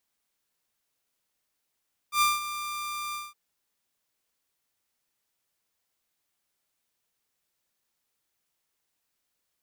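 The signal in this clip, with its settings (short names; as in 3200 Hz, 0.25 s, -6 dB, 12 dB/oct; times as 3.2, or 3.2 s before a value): ADSR saw 1190 Hz, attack 92 ms, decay 0.183 s, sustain -13 dB, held 1.02 s, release 0.196 s -16.5 dBFS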